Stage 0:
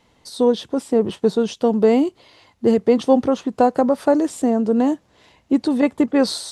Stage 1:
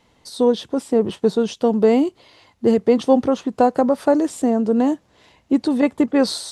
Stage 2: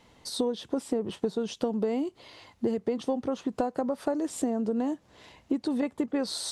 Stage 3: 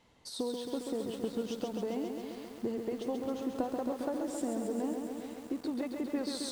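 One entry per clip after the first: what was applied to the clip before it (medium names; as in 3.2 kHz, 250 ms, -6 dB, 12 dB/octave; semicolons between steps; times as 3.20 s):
no audible change
compression 12:1, threshold -25 dBFS, peak gain reduction 16.5 dB
bit-crushed delay 135 ms, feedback 80%, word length 8-bit, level -5 dB; trim -7.5 dB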